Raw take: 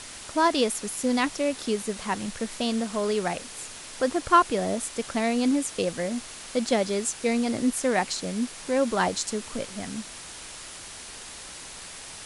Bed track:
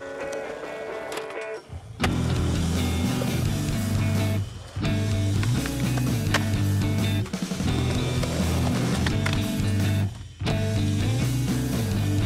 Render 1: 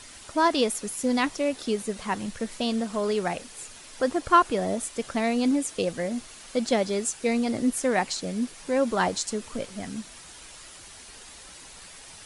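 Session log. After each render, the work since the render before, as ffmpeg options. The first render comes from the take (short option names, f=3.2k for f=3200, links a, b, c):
-af "afftdn=nr=7:nf=-42"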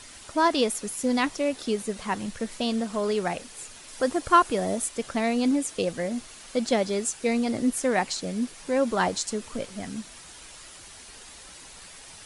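-filter_complex "[0:a]asettb=1/sr,asplit=3[a][b][c];[a]atrim=end=3.884[d];[b]atrim=start=3.88:end=4.89,asetpts=PTS-STARTPTS,afade=t=in:d=0.004:c=qsin,afade=t=out:st=1.006:d=0.004:c=qsin,highshelf=f=8.6k:g=7.5[e];[c]atrim=start=4.886[f];[d][e]acrossfade=d=0.004:c1=hsin:c2=qsin[g];[g][f]acrossfade=d=0.004:c1=qsin:c2=hsin"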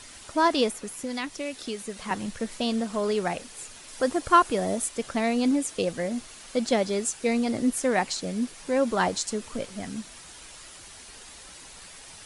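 -filter_complex "[0:a]asettb=1/sr,asplit=3[a][b][c];[a]atrim=end=0.704[d];[b]atrim=start=0.7:end=2.11,asetpts=PTS-STARTPTS,afade=t=in:d=0.004:c=qsin,afade=t=out:st=1.406:d=0.004:c=qsin,acrossover=split=570|1400|3000[e][f][g][h];[e]acompressor=threshold=-35dB:ratio=3[i];[f]acompressor=threshold=-44dB:ratio=3[j];[g]acompressor=threshold=-36dB:ratio=3[k];[h]acompressor=threshold=-39dB:ratio=3[l];[i][j][k][l]amix=inputs=4:normalize=0[m];[c]atrim=start=2.106[n];[d][m]acrossfade=d=0.004:c1=hsin:c2=qsin[o];[o][n]acrossfade=d=0.004:c1=qsin:c2=hsin"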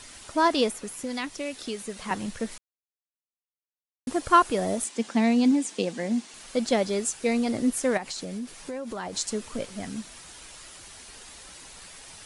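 -filter_complex "[0:a]asettb=1/sr,asplit=3[a][b][c];[a]atrim=end=4.844[d];[b]atrim=start=4.84:end=6.34,asetpts=PTS-STARTPTS,afade=t=in:d=0.004:c=qsin,afade=t=out:st=1.496:d=0.004:c=qsin,highpass=f=180:w=0.5412,highpass=f=180:w=1.3066,equalizer=f=220:t=q:w=4:g=8,equalizer=f=590:t=q:w=4:g=-6,equalizer=f=860:t=q:w=4:g=3,equalizer=f=1.3k:t=q:w=4:g=-5,lowpass=f=8.9k:w=0.5412,lowpass=f=8.9k:w=1.3066[e];[c]atrim=start=6.336[f];[d][e]acrossfade=d=0.004:c1=hsin:c2=qsin[g];[g][f]acrossfade=d=0.004:c1=qsin:c2=hsin,asettb=1/sr,asplit=3[h][i][j];[h]atrim=end=7.974[k];[i]atrim=start=7.97:end=9.15,asetpts=PTS-STARTPTS,afade=t=in:d=0.004:c=qsin,afade=t=out:st=1.176:d=0.004:c=qsin,acompressor=threshold=-30dB:ratio=10:attack=3.2:release=140:knee=1:detection=peak[l];[j]atrim=start=9.146[m];[k][l]acrossfade=d=0.004:c1=hsin:c2=qsin[n];[n][m]acrossfade=d=0.004:c1=qsin:c2=hsin,asplit=3[o][p][q];[o]atrim=end=2.58,asetpts=PTS-STARTPTS,afade=t=out:st=2.576:d=0.004:c=hsin[r];[p]atrim=start=2.58:end=4.07,asetpts=PTS-STARTPTS,volume=0[s];[q]atrim=start=4.07,asetpts=PTS-STARTPTS,afade=t=in:d=0.004:c=hsin[t];[r][s][t]concat=n=3:v=0:a=1"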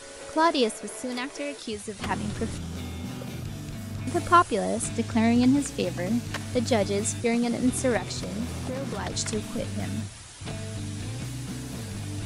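-filter_complex "[1:a]volume=-10.5dB[a];[0:a][a]amix=inputs=2:normalize=0"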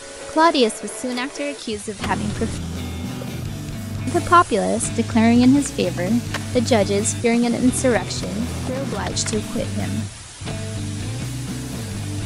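-af "volume=7dB,alimiter=limit=-3dB:level=0:latency=1"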